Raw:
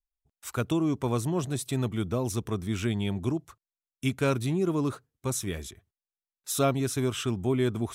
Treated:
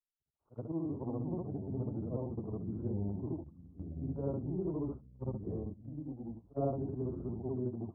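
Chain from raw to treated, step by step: short-time spectra conjugated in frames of 159 ms; steep low-pass 890 Hz 36 dB/octave; gain riding within 4 dB 2 s; ever faster or slower copies 195 ms, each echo -4 st, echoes 3, each echo -6 dB; gate -35 dBFS, range -10 dB; trim -6.5 dB

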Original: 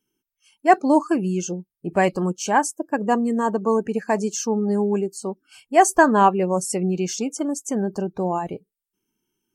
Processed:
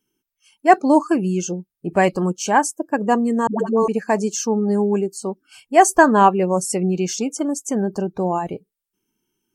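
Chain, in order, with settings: 3.47–3.88 s: phase dispersion highs, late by 125 ms, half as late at 440 Hz; trim +2.5 dB

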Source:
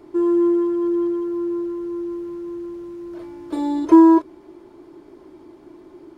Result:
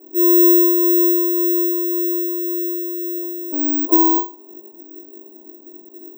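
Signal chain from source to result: coarse spectral quantiser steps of 15 dB; elliptic band-pass 210–1100 Hz, stop band 70 dB; level-controlled noise filter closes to 550 Hz, open at -13.5 dBFS; bass shelf 300 Hz +2.5 dB; in parallel at -1.5 dB: compression 10:1, threshold -32 dBFS, peak gain reduction 25 dB; on the sum: bit crusher 11-bit; on a send: flutter echo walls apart 3.5 m, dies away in 0.31 s; on the sum: careless resampling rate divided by 2×, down filtered, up zero stuff; trim -6 dB

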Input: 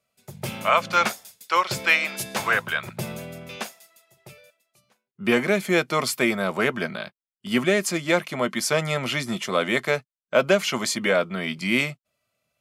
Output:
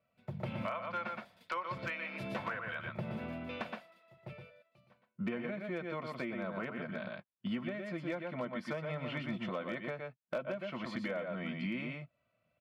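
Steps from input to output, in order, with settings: distance through air 420 m; delay 118 ms -6 dB; compression 12:1, threshold -35 dBFS, peak gain reduction 21 dB; treble shelf 9.4 kHz -2.5 dB; comb of notches 410 Hz; hard clipper -29 dBFS, distortion -27 dB; trim +1 dB

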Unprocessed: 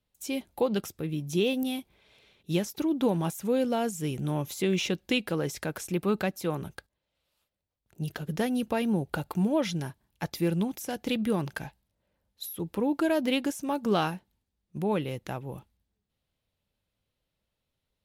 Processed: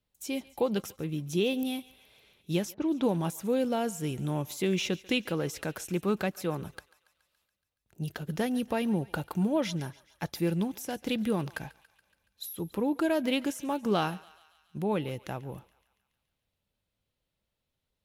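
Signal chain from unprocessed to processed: thinning echo 141 ms, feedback 66%, high-pass 830 Hz, level -19 dB; 2.74–3.16 s: level-controlled noise filter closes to 730 Hz, open at -22.5 dBFS; trim -1.5 dB

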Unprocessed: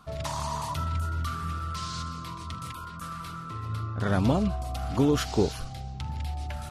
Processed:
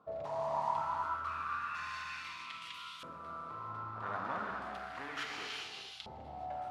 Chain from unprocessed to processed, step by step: 1.28–2.20 s: comb filter that takes the minimum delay 1.1 ms; valve stage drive 29 dB, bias 0.4; gated-style reverb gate 460 ms flat, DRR -1.5 dB; LFO band-pass saw up 0.33 Hz 510–3400 Hz; trim +2.5 dB

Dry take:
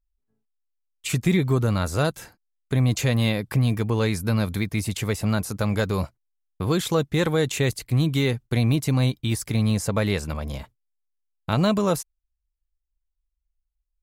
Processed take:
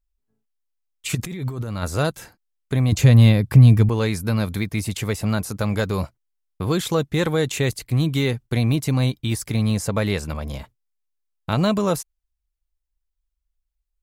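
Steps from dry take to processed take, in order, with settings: 1.15–1.83 s: compressor with a negative ratio -29 dBFS, ratio -1; 2.92–3.89 s: peaking EQ 82 Hz +12 dB 2.8 oct; trim +1 dB

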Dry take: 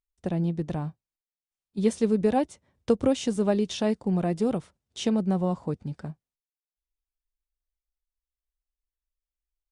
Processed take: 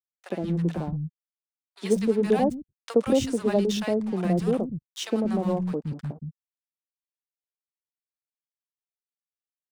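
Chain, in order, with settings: peaking EQ 130 Hz +2.5 dB 0.45 oct; crossover distortion -45 dBFS; three bands offset in time highs, mids, lows 60/180 ms, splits 210/890 Hz; trim +3.5 dB

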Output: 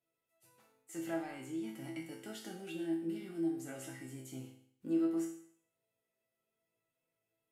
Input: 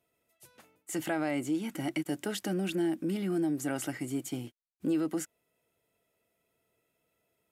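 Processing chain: chord resonator A2 minor, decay 0.62 s; trim +7 dB

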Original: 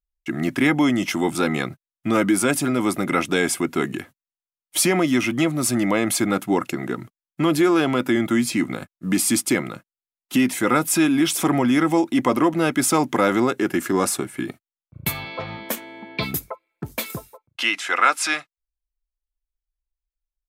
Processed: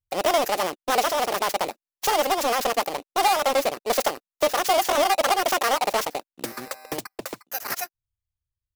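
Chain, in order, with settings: bit-reversed sample order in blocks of 32 samples; in parallel at -6 dB: bit crusher 5-bit; on the sum: speed mistake 33 rpm record played at 78 rpm; loudspeaker Doppler distortion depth 0.49 ms; trim -4 dB

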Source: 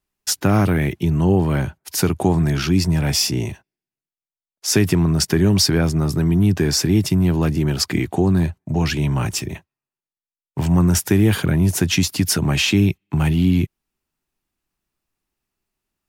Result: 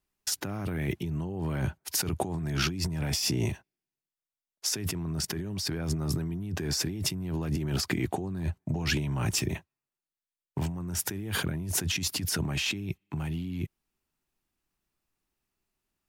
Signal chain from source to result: compressor with a negative ratio -23 dBFS, ratio -1; trim -8 dB

